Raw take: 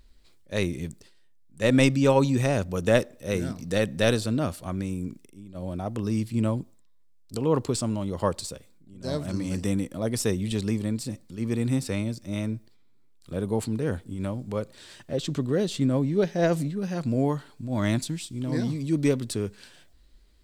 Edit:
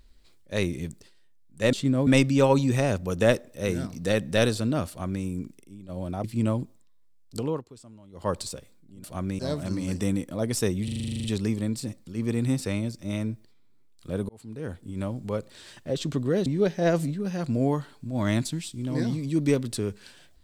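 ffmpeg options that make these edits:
-filter_complex "[0:a]asplit=20[s0][s1][s2][s3][s4][s5][s6][s7][s8][s9][s10][s11][s12][s13][s14][s15][s16][s17][s18][s19];[s0]atrim=end=1.732[s20];[s1]atrim=start=15.688:end=16.032[s21];[s2]atrim=start=1.728:end=5.902[s22];[s3]atrim=start=6.218:end=7.61,asetpts=PTS-STARTPTS,afade=t=out:st=1.162:d=0.23:silence=0.0891251[s23];[s4]atrim=start=7.61:end=8.1,asetpts=PTS-STARTPTS,volume=0.0891[s24];[s5]atrim=start=8.1:end=9.022,asetpts=PTS-STARTPTS,afade=t=in:d=0.23:silence=0.0891251[s25];[s6]atrim=start=4.548:end=4.902[s26];[s7]atrim=start=9.018:end=10.512[s27];[s8]atrim=start=10.468:end=10.512[s28];[s9]atrim=start=10.468:end=10.512[s29];[s10]atrim=start=10.468:end=10.512[s30];[s11]atrim=start=10.468:end=10.512[s31];[s12]atrim=start=10.468:end=10.512[s32];[s13]atrim=start=10.468:end=10.512[s33];[s14]atrim=start=10.468:end=10.512[s34];[s15]atrim=start=10.468:end=10.512[s35];[s16]atrim=start=10.468:end=10.512[s36];[s17]atrim=start=10.468:end=13.52,asetpts=PTS-STARTPTS,afade=t=out:st=3.048:d=0.004:c=hsin[s37];[s18]atrim=start=13.52:end=15.692,asetpts=PTS-STARTPTS,afade=t=in:d=0.79[s38];[s19]atrim=start=16.028[s39];[s20][s21]acrossfade=d=0.004:c1=hsin:c2=hsin[s40];[s40][s22]acrossfade=d=0.004:c1=hsin:c2=hsin[s41];[s23][s24][s25]concat=n=3:v=0:a=1[s42];[s41][s42]acrossfade=d=0.004:c1=hsin:c2=hsin[s43];[s43][s26]acrossfade=d=0.004:c1=hsin:c2=hsin[s44];[s44][s27]acrossfade=d=0.004:c1=hsin:c2=hsin[s45];[s45][s28]acrossfade=d=0.004:c1=hsin:c2=hsin[s46];[s46][s29]acrossfade=d=0.004:c1=hsin:c2=hsin[s47];[s47][s30]acrossfade=d=0.004:c1=hsin:c2=hsin[s48];[s48][s31]acrossfade=d=0.004:c1=hsin:c2=hsin[s49];[s49][s32]acrossfade=d=0.004:c1=hsin:c2=hsin[s50];[s50][s33]acrossfade=d=0.004:c1=hsin:c2=hsin[s51];[s51][s34]acrossfade=d=0.004:c1=hsin:c2=hsin[s52];[s52][s35]acrossfade=d=0.004:c1=hsin:c2=hsin[s53];[s53][s36]acrossfade=d=0.004:c1=hsin:c2=hsin[s54];[s37][s38]concat=n=2:v=0:a=1[s55];[s54][s55]acrossfade=d=0.004:c1=hsin:c2=hsin[s56];[s56][s39]acrossfade=d=0.004:c1=hsin:c2=hsin"

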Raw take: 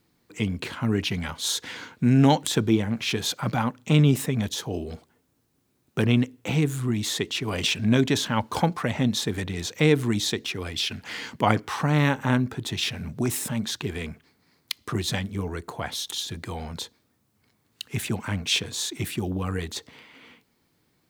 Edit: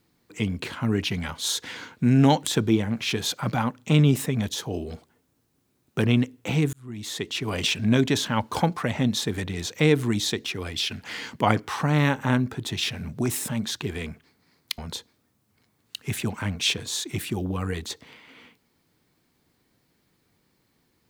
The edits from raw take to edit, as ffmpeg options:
-filter_complex "[0:a]asplit=3[s0][s1][s2];[s0]atrim=end=6.73,asetpts=PTS-STARTPTS,afade=t=out:st=6.726:d=0.004:c=hsin[s3];[s1]atrim=start=6.73:end=14.782,asetpts=PTS-STARTPTS,afade=t=in:d=0.7[s4];[s2]atrim=start=16.638[s5];[s3][s4]concat=n=2:v=0:a=1[s6];[s6][s5]acrossfade=d=0.004:c1=hsin:c2=hsin"

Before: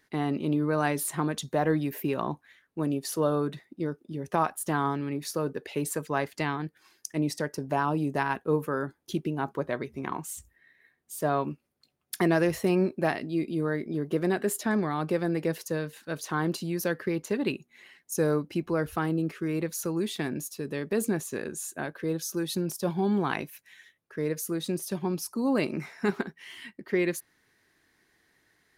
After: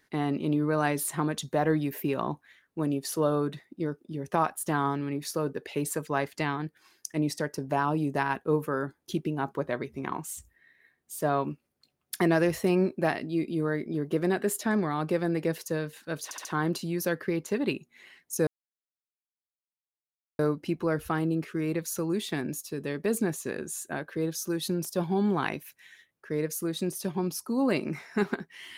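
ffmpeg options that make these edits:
-filter_complex "[0:a]asplit=5[s0][s1][s2][s3][s4];[s0]atrim=end=16.312[s5];[s1]atrim=start=16.238:end=16.312[s6];[s2]atrim=start=16.238:end=16.312[s7];[s3]atrim=start=16.238:end=18.26,asetpts=PTS-STARTPTS,afade=t=out:st=2.018:d=0.004:c=hsin,apad=pad_dur=1.92[s8];[s4]atrim=start=18.26,asetpts=PTS-STARTPTS,afade=t=in:d=0.004:c=hsin[s9];[s5][s6]acrossfade=d=0.004:c1=hsin:c2=hsin[s10];[s10][s7]acrossfade=d=0.004:c1=hsin:c2=hsin[s11];[s8][s9]concat=n=2:v=0:a=1[s12];[s11][s12]acrossfade=d=0.004:c1=hsin:c2=hsin"

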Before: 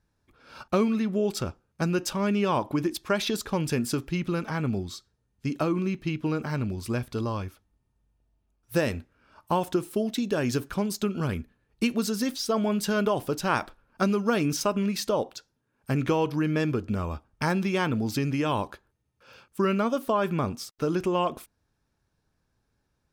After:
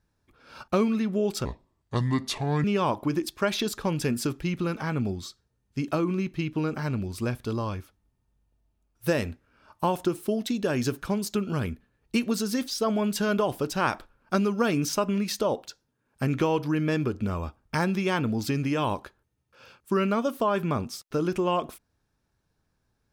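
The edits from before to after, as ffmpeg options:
-filter_complex "[0:a]asplit=3[s0][s1][s2];[s0]atrim=end=1.454[s3];[s1]atrim=start=1.45:end=2.32,asetpts=PTS-STARTPTS,asetrate=32193,aresample=44100[s4];[s2]atrim=start=2.316[s5];[s3][s4]acrossfade=d=0.004:c1=hsin:c2=hsin[s6];[s6][s5]acrossfade=d=0.004:c1=hsin:c2=hsin"

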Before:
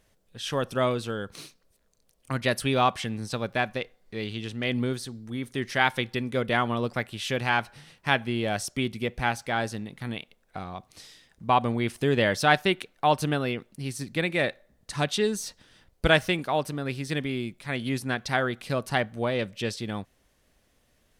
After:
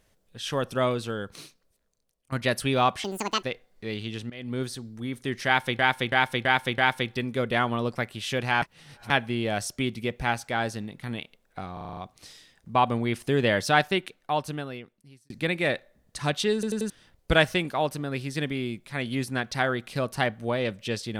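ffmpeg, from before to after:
-filter_complex "[0:a]asplit=22[s0][s1][s2][s3][s4][s5][s6][s7][s8][s9][s10][s11][s12][s13][s14][s15][s16][s17][s18][s19][s20][s21];[s0]atrim=end=2.32,asetpts=PTS-STARTPTS,afade=t=out:st=1.22:d=1.1:silence=0.158489[s22];[s1]atrim=start=2.32:end=3.044,asetpts=PTS-STARTPTS,afade=t=in:d=0.004:c=hsin:silence=0.158489[s23];[s2]atrim=start=3.04:end=3.73,asetpts=PTS-STARTPTS,asetrate=78057,aresample=44100[s24];[s3]atrim=start=3.726:end=4.6,asetpts=PTS-STARTPTS,afade=t=out:st=0.87:d=0.004:c=hsin:silence=0.177828[s25];[s4]atrim=start=4.6:end=6.092,asetpts=PTS-STARTPTS,afade=t=in:d=0.32:c=qua:silence=0.177828[s26];[s5]atrim=start=5.758:end=6.092[s27];[s6]atrim=start=5.758:end=6.092[s28];[s7]atrim=start=5.758:end=6.092[s29];[s8]atrim=start=5.758:end=7.602[s30];[s9]atrim=start=7.598:end=8.082,asetpts=PTS-STARTPTS,areverse[s31];[s10]atrim=start=8.078:end=10.752[s32];[s11]atrim=start=10.708:end=10.752[s33];[s12]atrim=start=10.708:end=10.752[s34];[s13]atrim=start=10.708:end=10.752[s35];[s14]atrim=start=10.708:end=10.752[s36];[s15]atrim=start=10.708:end=10.752[s37];[s16]atrim=start=10.708:end=14.04,asetpts=PTS-STARTPTS,afade=t=out:st=1.692:d=1.64[s38];[s17]atrim=start=14.04:end=15.372,asetpts=PTS-STARTPTS,afade=t=in:d=0.004:c=hsin[s39];[s18]atrim=start=15.278:end=15.372[s40];[s19]atrim=start=15.278:end=15.372[s41];[s20]atrim=start=15.278:end=15.372[s42];[s21]atrim=start=15.638[s43];[s22][s23]concat=n=2:v=0:a=1[s44];[s44][s24]acrossfade=d=0.004:c1=hsin:c2=hsin[s45];[s25][s26]concat=n=2:v=0:a=1[s46];[s45][s46]acrossfade=d=0.004:c1=hsin:c2=hsin[s47];[s47][s27]acrossfade=d=0.004:c1=hsin:c2=hsin[s48];[s48][s28]acrossfade=d=0.004:c1=hsin:c2=hsin[s49];[s49][s29]acrossfade=d=0.004:c1=hsin:c2=hsin[s50];[s50][s30]acrossfade=d=0.004:c1=hsin:c2=hsin[s51];[s51][s31]acrossfade=d=0.004:c1=hsin:c2=hsin[s52];[s52][s32]acrossfade=d=0.004:c1=hsin:c2=hsin[s53];[s53][s33]acrossfade=d=0.004:c1=hsin:c2=hsin[s54];[s54][s34]acrossfade=d=0.004:c1=hsin:c2=hsin[s55];[s55][s35]acrossfade=d=0.004:c1=hsin:c2=hsin[s56];[s56][s36]acrossfade=d=0.004:c1=hsin:c2=hsin[s57];[s57][s37]acrossfade=d=0.004:c1=hsin:c2=hsin[s58];[s38][s39]concat=n=2:v=0:a=1[s59];[s58][s59]acrossfade=d=0.004:c1=hsin:c2=hsin[s60];[s60][s40]acrossfade=d=0.004:c1=hsin:c2=hsin[s61];[s61][s41]acrossfade=d=0.004:c1=hsin:c2=hsin[s62];[s62][s42]acrossfade=d=0.004:c1=hsin:c2=hsin[s63];[s63][s43]acrossfade=d=0.004:c1=hsin:c2=hsin"

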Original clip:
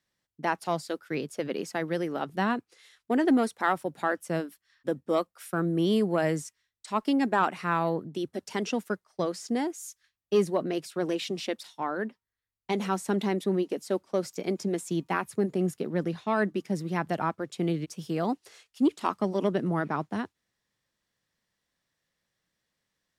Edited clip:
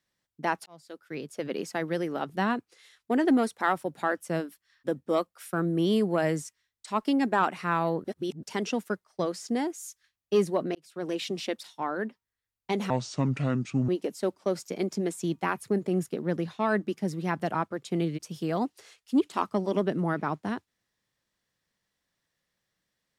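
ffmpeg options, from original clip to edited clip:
-filter_complex "[0:a]asplit=7[s0][s1][s2][s3][s4][s5][s6];[s0]atrim=end=0.66,asetpts=PTS-STARTPTS,afade=t=out:st=0.656:d=0.004:c=hsin[s7];[s1]atrim=start=0.66:end=8.042,asetpts=PTS-STARTPTS,afade=t=in:d=0.92[s8];[s2]atrim=start=8.038:end=8.432,asetpts=PTS-STARTPTS,areverse[s9];[s3]atrim=start=8.428:end=10.75,asetpts=PTS-STARTPTS,afade=t=out:st=2.318:d=0.004:c=hsin[s10];[s4]atrim=start=10.75:end=12.904,asetpts=PTS-STARTPTS,afade=t=in:d=0.47[s11];[s5]atrim=start=12.9:end=13.56,asetpts=PTS-STARTPTS,asetrate=29547,aresample=44100[s12];[s6]atrim=start=13.556[s13];[s7][s8]concat=n=2:v=0:a=1[s14];[s14][s9]acrossfade=d=0.004:c1=hsin:c2=hsin[s15];[s10][s11]concat=n=2:v=0:a=1[s16];[s15][s16]acrossfade=d=0.004:c1=hsin:c2=hsin[s17];[s17][s12]acrossfade=d=0.004:c1=hsin:c2=hsin[s18];[s18][s13]acrossfade=d=0.004:c1=hsin:c2=hsin"

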